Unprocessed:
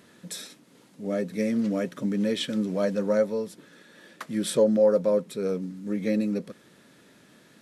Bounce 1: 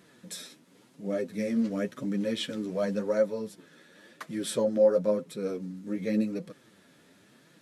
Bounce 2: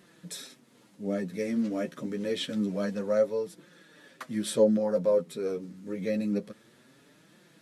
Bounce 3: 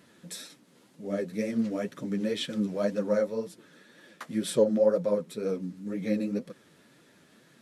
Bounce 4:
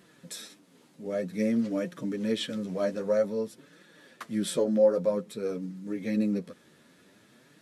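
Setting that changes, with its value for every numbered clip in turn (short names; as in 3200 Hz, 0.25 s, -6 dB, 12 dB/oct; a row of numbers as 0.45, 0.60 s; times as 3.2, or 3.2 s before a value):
flange, rate: 0.93, 0.27, 2, 0.52 Hz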